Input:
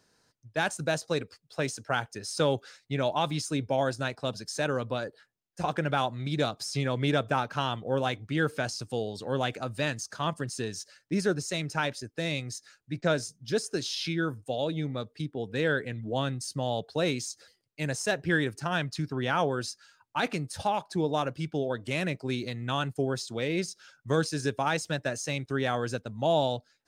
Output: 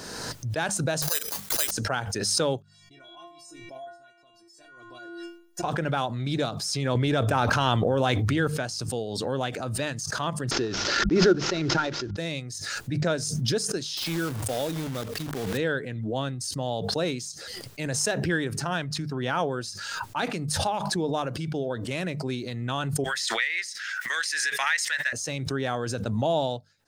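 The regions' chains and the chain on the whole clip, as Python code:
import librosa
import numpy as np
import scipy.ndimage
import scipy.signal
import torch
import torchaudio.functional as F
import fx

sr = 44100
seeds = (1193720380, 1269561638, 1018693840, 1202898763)

y = fx.chain(x, sr, fx.highpass(hz=920.0, slope=12),
    fx.resample_bad(factor=8, down='none', up='zero_stuff'), at=(1.02, 1.71))
y = fx.chain(y, sr, fx.level_steps(step_db=9),
    fx.stiff_resonator(f0_hz=340.0, decay_s=0.54, stiffness=0.008), at=(2.62, 5.63))
y = fx.chain(y, sr, fx.peak_eq(hz=100.0, db=6.0, octaves=0.31),
    fx.env_flatten(amount_pct=100), at=(6.95, 8.48))
y = fx.chain(y, sr, fx.cvsd(bps=32000),
    fx.small_body(hz=(350.0, 1400.0), ring_ms=35, db=11),
    fx.pre_swell(db_per_s=82.0), at=(10.51, 12.17))
y = fx.chain(y, sr, fx.block_float(bits=3),
    fx.sustainer(db_per_s=67.0), at=(13.97, 15.59))
y = fx.chain(y, sr, fx.highpass_res(hz=1900.0, q=7.9),
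    fx.band_squash(depth_pct=70), at=(23.04, 25.13))
y = fx.peak_eq(y, sr, hz=2300.0, db=-2.5, octaves=0.74)
y = fx.hum_notches(y, sr, base_hz=50, count=4)
y = fx.pre_swell(y, sr, db_per_s=26.0)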